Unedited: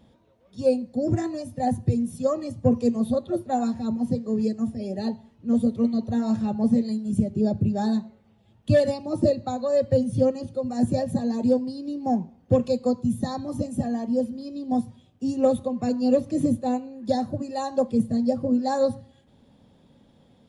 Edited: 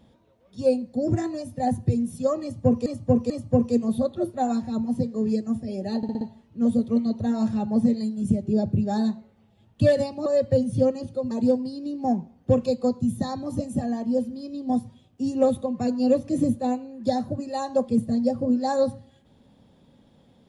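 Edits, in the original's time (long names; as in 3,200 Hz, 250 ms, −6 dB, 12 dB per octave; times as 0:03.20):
0:02.42–0:02.86: repeat, 3 plays
0:05.09: stutter 0.06 s, 5 plays
0:09.14–0:09.66: remove
0:10.71–0:11.33: remove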